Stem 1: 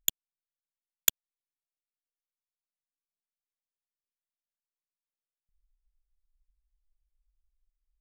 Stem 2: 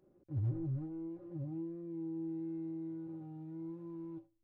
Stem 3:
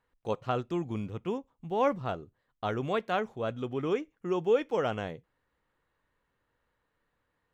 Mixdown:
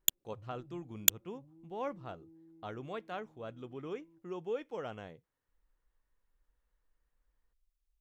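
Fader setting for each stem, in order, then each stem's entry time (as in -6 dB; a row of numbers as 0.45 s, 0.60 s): -1.0 dB, -18.5 dB, -11.5 dB; 0.00 s, 0.00 s, 0.00 s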